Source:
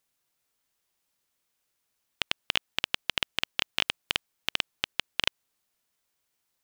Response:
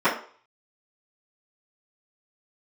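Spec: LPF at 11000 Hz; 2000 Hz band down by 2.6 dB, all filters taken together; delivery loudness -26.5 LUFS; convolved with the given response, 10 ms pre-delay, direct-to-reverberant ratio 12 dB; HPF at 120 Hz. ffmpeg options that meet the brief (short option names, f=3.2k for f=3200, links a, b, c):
-filter_complex "[0:a]highpass=120,lowpass=11k,equalizer=f=2k:t=o:g=-3.5,asplit=2[a][b];[1:a]atrim=start_sample=2205,adelay=10[c];[b][c]afir=irnorm=-1:irlink=0,volume=-31dB[d];[a][d]amix=inputs=2:normalize=0,volume=5.5dB"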